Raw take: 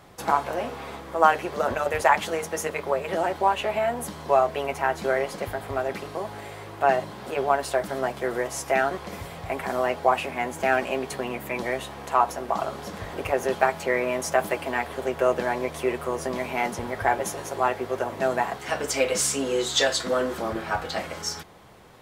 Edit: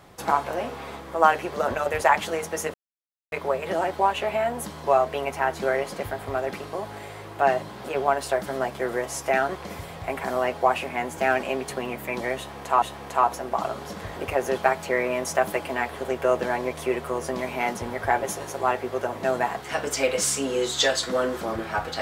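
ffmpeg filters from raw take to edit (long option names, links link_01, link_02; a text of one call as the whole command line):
ffmpeg -i in.wav -filter_complex "[0:a]asplit=3[link_01][link_02][link_03];[link_01]atrim=end=2.74,asetpts=PTS-STARTPTS,afade=type=out:start_time=2.736:duration=0.004:curve=hsin,apad=pad_dur=0.58[link_04];[link_02]atrim=start=2.74:end=12.242,asetpts=PTS-STARTPTS,afade=type=in:duration=0.004:curve=hsin[link_05];[link_03]atrim=start=11.788[link_06];[link_04][link_05]concat=n=2:v=0:a=1[link_07];[link_07][link_06]acrossfade=duration=0.004:curve1=hsin:curve2=hsin" out.wav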